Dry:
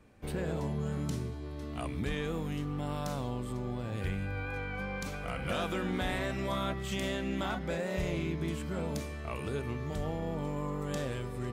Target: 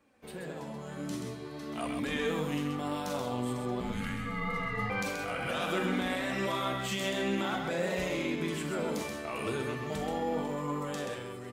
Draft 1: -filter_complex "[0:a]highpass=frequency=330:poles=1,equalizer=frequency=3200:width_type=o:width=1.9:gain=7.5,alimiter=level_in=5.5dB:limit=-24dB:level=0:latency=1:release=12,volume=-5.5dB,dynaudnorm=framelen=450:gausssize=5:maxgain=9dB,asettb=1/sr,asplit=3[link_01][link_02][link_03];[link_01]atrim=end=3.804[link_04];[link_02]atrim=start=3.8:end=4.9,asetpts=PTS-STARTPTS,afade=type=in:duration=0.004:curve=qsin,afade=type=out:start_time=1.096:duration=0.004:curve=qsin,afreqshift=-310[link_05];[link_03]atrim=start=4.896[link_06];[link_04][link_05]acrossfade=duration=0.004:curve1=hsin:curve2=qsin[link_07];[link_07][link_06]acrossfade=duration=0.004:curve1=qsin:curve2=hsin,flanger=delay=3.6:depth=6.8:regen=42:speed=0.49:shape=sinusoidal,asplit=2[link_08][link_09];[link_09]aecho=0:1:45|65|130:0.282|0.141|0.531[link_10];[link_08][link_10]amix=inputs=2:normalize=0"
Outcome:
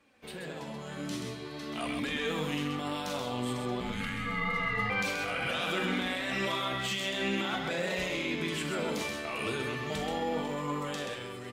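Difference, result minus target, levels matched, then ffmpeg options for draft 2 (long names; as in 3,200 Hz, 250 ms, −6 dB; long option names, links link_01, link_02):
4,000 Hz band +3.5 dB
-filter_complex "[0:a]highpass=frequency=330:poles=1,alimiter=level_in=5.5dB:limit=-24dB:level=0:latency=1:release=12,volume=-5.5dB,dynaudnorm=framelen=450:gausssize=5:maxgain=9dB,asettb=1/sr,asplit=3[link_01][link_02][link_03];[link_01]atrim=end=3.804[link_04];[link_02]atrim=start=3.8:end=4.9,asetpts=PTS-STARTPTS,afade=type=in:duration=0.004:curve=qsin,afade=type=out:start_time=1.096:duration=0.004:curve=qsin,afreqshift=-310[link_05];[link_03]atrim=start=4.896[link_06];[link_04][link_05]acrossfade=duration=0.004:curve1=hsin:curve2=qsin[link_07];[link_07][link_06]acrossfade=duration=0.004:curve1=qsin:curve2=hsin,flanger=delay=3.6:depth=6.8:regen=42:speed=0.49:shape=sinusoidal,asplit=2[link_08][link_09];[link_09]aecho=0:1:45|65|130:0.282|0.141|0.531[link_10];[link_08][link_10]amix=inputs=2:normalize=0"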